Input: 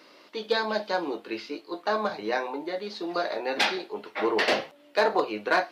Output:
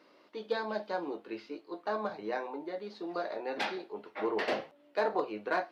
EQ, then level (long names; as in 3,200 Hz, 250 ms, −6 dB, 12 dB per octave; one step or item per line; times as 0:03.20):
high-shelf EQ 2,200 Hz −10 dB
−6.0 dB